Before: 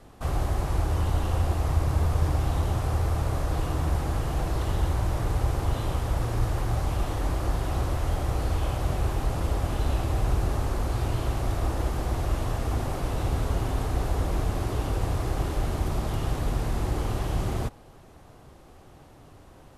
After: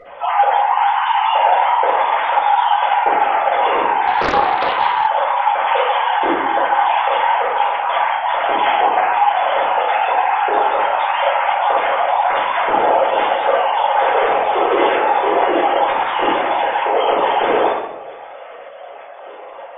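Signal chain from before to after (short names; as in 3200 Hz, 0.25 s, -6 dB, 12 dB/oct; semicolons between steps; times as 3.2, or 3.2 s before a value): sine-wave speech; 7.42–8.41 negative-ratio compressor -27 dBFS, ratio -0.5; shoebox room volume 300 m³, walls mixed, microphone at 4.9 m; 4.07–5.07 Doppler distortion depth 0.73 ms; gain -3.5 dB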